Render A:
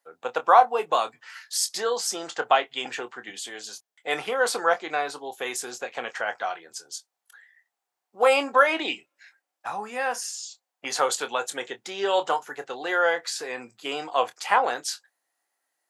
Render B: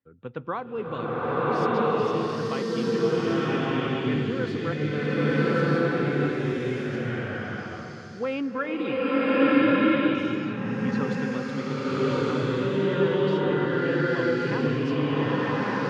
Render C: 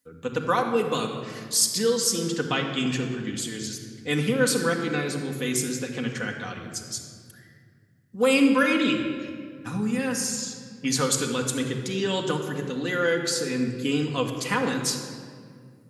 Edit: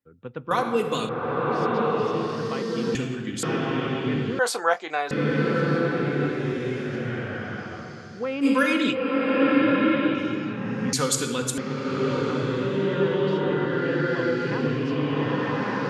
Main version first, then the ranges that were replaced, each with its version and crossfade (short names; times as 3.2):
B
0.51–1.09 from C
2.95–3.43 from C
4.39–5.11 from A
8.44–8.93 from C, crossfade 0.06 s
10.93–11.58 from C